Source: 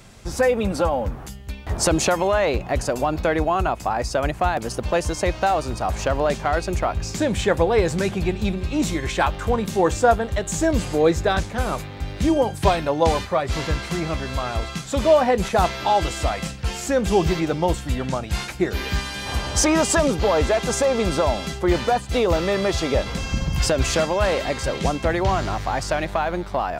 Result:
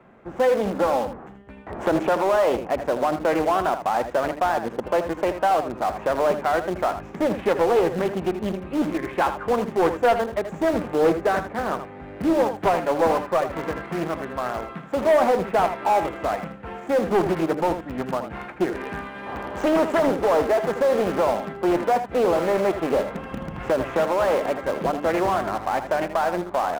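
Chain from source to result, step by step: median filter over 9 samples; three-band isolator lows -20 dB, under 180 Hz, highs -22 dB, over 2.1 kHz; de-hum 148.2 Hz, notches 2; in parallel at -11.5 dB: bit crusher 4-bit; on the sum: saturation -12.5 dBFS, distortion -16 dB; on a send: delay 80 ms -10 dB; on the sum: loudspeaker Doppler distortion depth 0.36 ms

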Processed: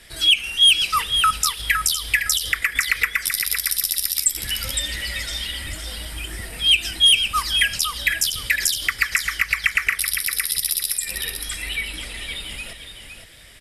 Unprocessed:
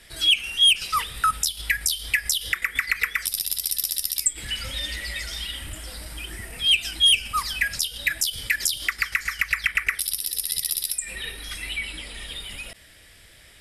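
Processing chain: feedback delay 511 ms, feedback 20%, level -7.5 dB; trim +3 dB

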